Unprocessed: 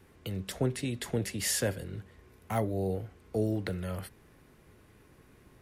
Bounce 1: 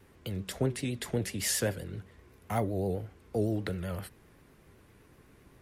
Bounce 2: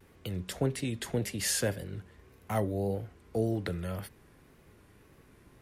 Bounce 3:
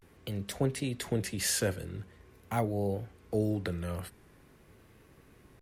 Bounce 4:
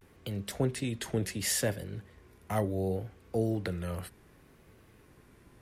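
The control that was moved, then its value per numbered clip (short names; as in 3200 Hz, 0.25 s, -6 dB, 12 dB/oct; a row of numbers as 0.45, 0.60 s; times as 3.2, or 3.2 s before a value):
vibrato, rate: 7.8, 1.8, 0.45, 0.69 Hz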